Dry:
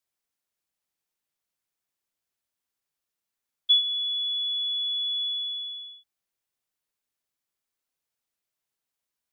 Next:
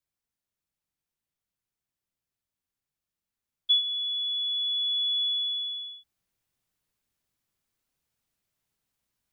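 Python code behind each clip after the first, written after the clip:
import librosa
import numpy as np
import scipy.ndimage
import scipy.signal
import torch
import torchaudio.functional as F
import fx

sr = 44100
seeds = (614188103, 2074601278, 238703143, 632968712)

y = fx.bass_treble(x, sr, bass_db=11, treble_db=-1)
y = fx.rider(y, sr, range_db=4, speed_s=2.0)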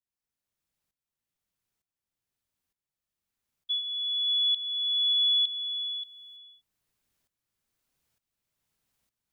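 y = fx.tremolo_shape(x, sr, shape='saw_up', hz=1.1, depth_pct=85)
y = y + 10.0 ** (-11.5 / 20.0) * np.pad(y, (int(580 * sr / 1000.0), 0))[:len(y)]
y = y * 10.0 ** (5.0 / 20.0)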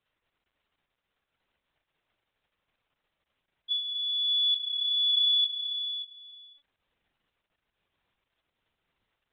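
y = fx.dmg_crackle(x, sr, seeds[0], per_s=220.0, level_db=-58.0)
y = fx.lpc_vocoder(y, sr, seeds[1], excitation='pitch_kept', order=16)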